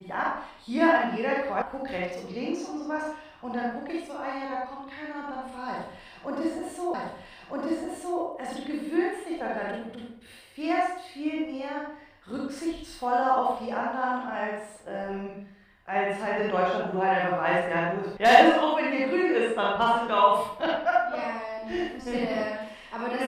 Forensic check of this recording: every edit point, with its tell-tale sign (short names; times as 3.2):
1.62 sound cut off
6.94 repeat of the last 1.26 s
18.17 sound cut off